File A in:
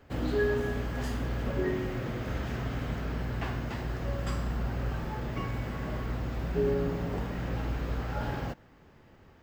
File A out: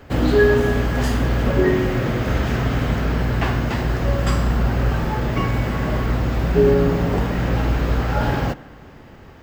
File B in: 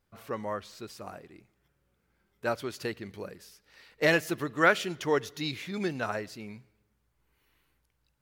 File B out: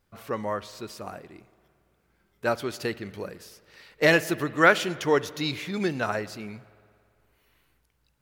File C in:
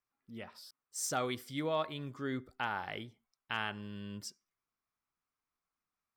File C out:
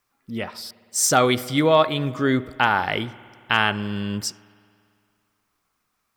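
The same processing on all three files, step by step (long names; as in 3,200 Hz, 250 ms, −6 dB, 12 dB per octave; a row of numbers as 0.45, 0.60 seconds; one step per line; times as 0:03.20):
spring reverb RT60 2.3 s, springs 56 ms, chirp 70 ms, DRR 18.5 dB
normalise the peak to −3 dBFS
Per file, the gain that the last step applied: +13.0, +4.5, +17.0 decibels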